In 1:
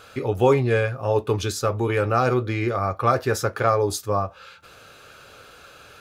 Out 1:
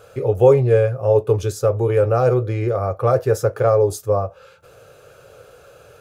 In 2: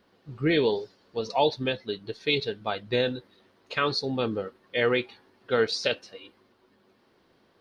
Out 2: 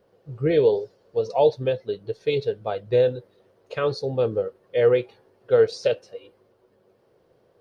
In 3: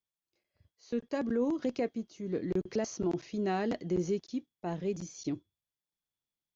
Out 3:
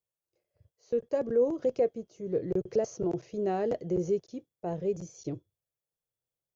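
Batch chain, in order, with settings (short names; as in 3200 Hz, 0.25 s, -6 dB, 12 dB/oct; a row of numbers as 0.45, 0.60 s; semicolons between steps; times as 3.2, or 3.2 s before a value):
graphic EQ 125/250/500/1000/2000/4000 Hz +7/-9/+11/-4/-5/-8 dB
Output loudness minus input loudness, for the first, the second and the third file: +4.5, +4.5, +3.0 LU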